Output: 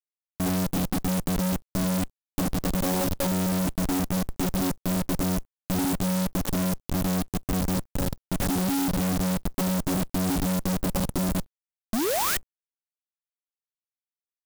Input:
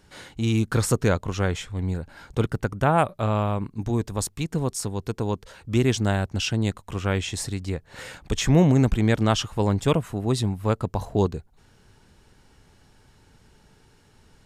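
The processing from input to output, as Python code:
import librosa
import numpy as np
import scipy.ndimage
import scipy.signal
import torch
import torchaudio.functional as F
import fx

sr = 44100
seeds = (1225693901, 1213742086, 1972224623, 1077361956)

y = fx.chord_vocoder(x, sr, chord='bare fifth', root=54)
y = fx.env_lowpass_down(y, sr, base_hz=440.0, full_db=-22.0)
y = fx.spec_paint(y, sr, seeds[0], shape='rise', start_s=11.93, length_s=0.44, low_hz=200.0, high_hz=2000.0, level_db=-25.0)
y = fx.schmitt(y, sr, flips_db=-37.5)
y = fx.quant_dither(y, sr, seeds[1], bits=10, dither='none')
y = fx.clock_jitter(y, sr, seeds[2], jitter_ms=0.12)
y = y * 10.0 ** (2.0 / 20.0)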